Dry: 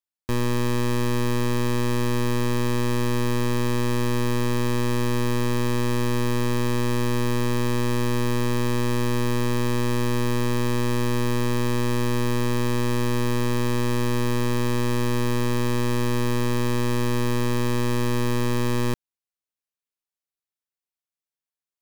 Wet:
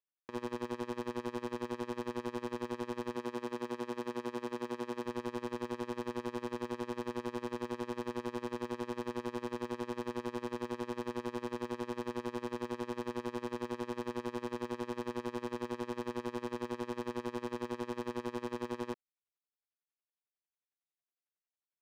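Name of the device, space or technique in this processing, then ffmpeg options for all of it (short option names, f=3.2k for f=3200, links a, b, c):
helicopter radio: -filter_complex "[0:a]highpass=320,lowpass=2.8k,aeval=exprs='val(0)*pow(10,-25*(0.5-0.5*cos(2*PI*11*n/s))/20)':c=same,asoftclip=type=hard:threshold=-28.5dB,asettb=1/sr,asplit=3[a][b][c];[a]atrim=end=3.164[d];[b]atrim=start=3.16:end=5.06,asetpts=PTS-STARTPTS,afade=t=in:d=0.004:c=qsin,afade=t=out:st=1.896:d=0.004:c=qsin,highpass=140[e];[c]atrim=start=5.056[f];[d][e]acrossfade=d=0.004:c1=hsin:c2=qsin[g];[g][f]acrossfade=d=0.004:c1=qsin:c2=hsin"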